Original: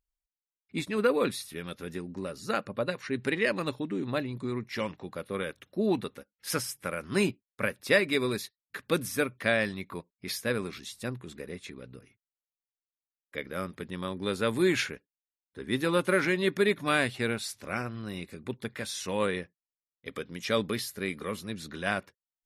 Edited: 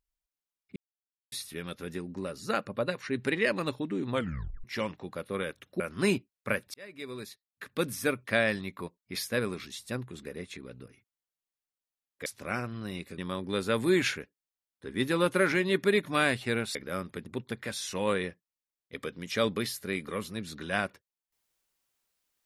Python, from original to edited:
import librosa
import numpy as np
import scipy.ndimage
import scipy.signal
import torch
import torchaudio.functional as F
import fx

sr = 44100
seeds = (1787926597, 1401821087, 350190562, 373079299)

y = fx.edit(x, sr, fx.silence(start_s=0.76, length_s=0.56),
    fx.tape_stop(start_s=4.11, length_s=0.53),
    fx.cut(start_s=5.8, length_s=1.13),
    fx.fade_in_span(start_s=7.87, length_s=1.41),
    fx.swap(start_s=13.39, length_s=0.52, other_s=17.48, other_length_s=0.92), tone=tone)